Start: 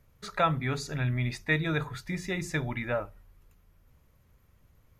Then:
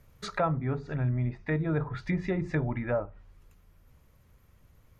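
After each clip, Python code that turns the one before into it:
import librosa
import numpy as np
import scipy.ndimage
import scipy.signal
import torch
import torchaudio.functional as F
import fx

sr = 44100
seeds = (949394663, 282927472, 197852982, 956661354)

y = fx.env_lowpass_down(x, sr, base_hz=960.0, full_db=-28.5)
y = fx.rider(y, sr, range_db=5, speed_s=0.5)
y = y * 10.0 ** (2.0 / 20.0)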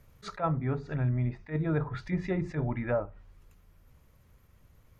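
y = fx.attack_slew(x, sr, db_per_s=270.0)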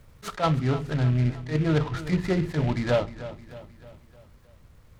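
y = fx.echo_feedback(x, sr, ms=310, feedback_pct=51, wet_db=-15)
y = fx.noise_mod_delay(y, sr, seeds[0], noise_hz=2000.0, depth_ms=0.046)
y = y * 10.0 ** (6.0 / 20.0)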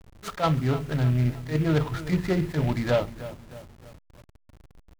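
y = fx.delta_hold(x, sr, step_db=-45.0)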